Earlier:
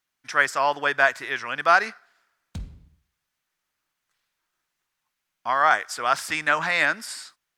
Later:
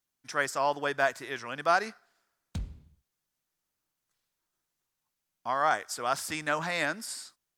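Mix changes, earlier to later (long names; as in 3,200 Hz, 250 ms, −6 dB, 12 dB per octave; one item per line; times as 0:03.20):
speech: add parametric band 1,900 Hz −10.5 dB 2.5 octaves
reverb: off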